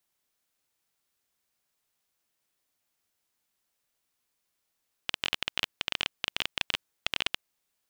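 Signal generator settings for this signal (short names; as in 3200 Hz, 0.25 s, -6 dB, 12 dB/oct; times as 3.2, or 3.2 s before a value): random clicks 18/s -9 dBFS 2.30 s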